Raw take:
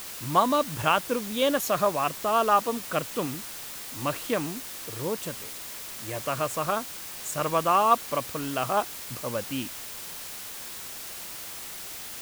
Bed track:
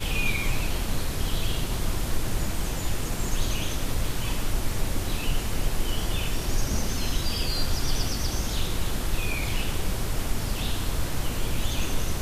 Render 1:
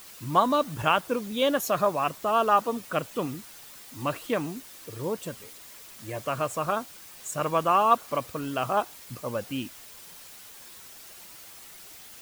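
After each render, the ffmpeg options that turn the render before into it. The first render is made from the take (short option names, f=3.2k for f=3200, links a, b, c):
-af "afftdn=nr=9:nf=-39"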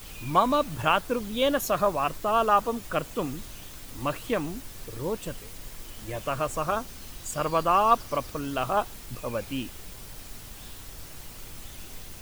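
-filter_complex "[1:a]volume=-17.5dB[a];[0:a][a]amix=inputs=2:normalize=0"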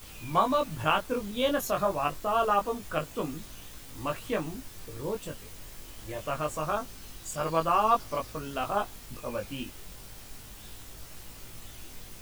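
-af "flanger=delay=18.5:depth=2.1:speed=0.26"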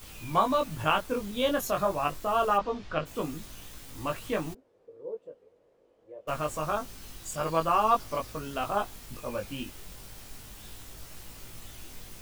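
-filter_complex "[0:a]asplit=3[a][b][c];[a]afade=t=out:st=2.57:d=0.02[d];[b]lowpass=f=5k:w=0.5412,lowpass=f=5k:w=1.3066,afade=t=in:st=2.57:d=0.02,afade=t=out:st=3.05:d=0.02[e];[c]afade=t=in:st=3.05:d=0.02[f];[d][e][f]amix=inputs=3:normalize=0,asplit=3[g][h][i];[g]afade=t=out:st=4.53:d=0.02[j];[h]bandpass=f=490:t=q:w=5.6,afade=t=in:st=4.53:d=0.02,afade=t=out:st=6.27:d=0.02[k];[i]afade=t=in:st=6.27:d=0.02[l];[j][k][l]amix=inputs=3:normalize=0"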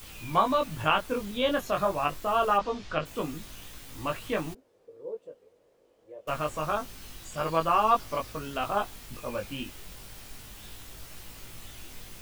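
-filter_complex "[0:a]acrossover=split=3600[a][b];[b]acompressor=threshold=-55dB:ratio=4:attack=1:release=60[c];[a][c]amix=inputs=2:normalize=0,highshelf=f=2.9k:g=8.5"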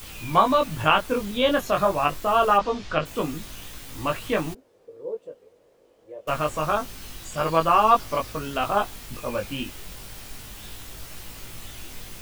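-af "volume=5.5dB"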